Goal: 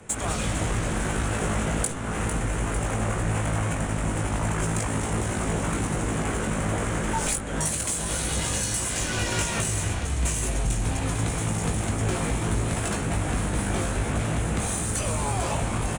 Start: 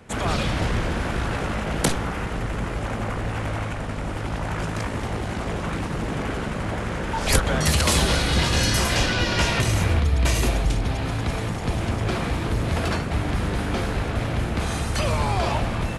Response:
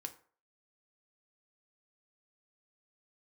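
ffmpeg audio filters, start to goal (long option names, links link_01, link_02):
-filter_complex "[0:a]aresample=22050,aresample=44100,acrossover=split=230|3200[link_01][link_02][link_03];[link_03]aexciter=amount=14:drive=4:freq=6900[link_04];[link_01][link_02][link_04]amix=inputs=3:normalize=0,acompressor=threshold=-23dB:ratio=10,asplit=2[link_05][link_06];[link_06]asplit=7[link_07][link_08][link_09][link_10][link_11][link_12][link_13];[link_07]adelay=451,afreqshift=58,volume=-10dB[link_14];[link_08]adelay=902,afreqshift=116,volume=-14.4dB[link_15];[link_09]adelay=1353,afreqshift=174,volume=-18.9dB[link_16];[link_10]adelay=1804,afreqshift=232,volume=-23.3dB[link_17];[link_11]adelay=2255,afreqshift=290,volume=-27.7dB[link_18];[link_12]adelay=2706,afreqshift=348,volume=-32.2dB[link_19];[link_13]adelay=3157,afreqshift=406,volume=-36.6dB[link_20];[link_14][link_15][link_16][link_17][link_18][link_19][link_20]amix=inputs=7:normalize=0[link_21];[link_05][link_21]amix=inputs=2:normalize=0,adynamicsmooth=sensitivity=3.5:basefreq=6000,asplit=2[link_22][link_23];[link_23]adelay=19,volume=-5dB[link_24];[link_22][link_24]amix=inputs=2:normalize=0"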